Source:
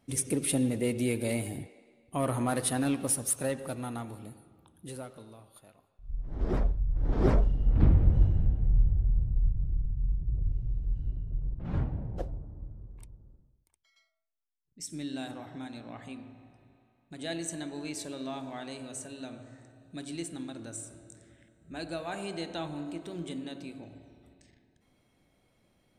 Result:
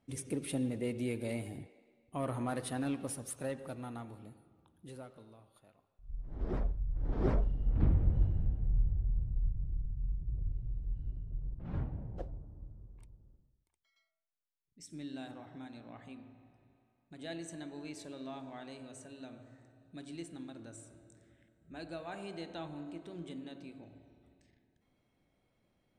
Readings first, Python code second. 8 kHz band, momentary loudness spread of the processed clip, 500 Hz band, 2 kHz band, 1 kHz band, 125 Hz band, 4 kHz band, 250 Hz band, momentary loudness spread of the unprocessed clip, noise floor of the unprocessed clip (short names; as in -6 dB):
-14.0 dB, 19 LU, -6.5 dB, -7.5 dB, -6.5 dB, -6.5 dB, -9.0 dB, -6.5 dB, 18 LU, -71 dBFS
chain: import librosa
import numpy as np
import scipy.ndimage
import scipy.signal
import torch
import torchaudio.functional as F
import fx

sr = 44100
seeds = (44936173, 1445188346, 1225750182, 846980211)

y = fx.lowpass(x, sr, hz=3900.0, slope=6)
y = y * librosa.db_to_amplitude(-6.5)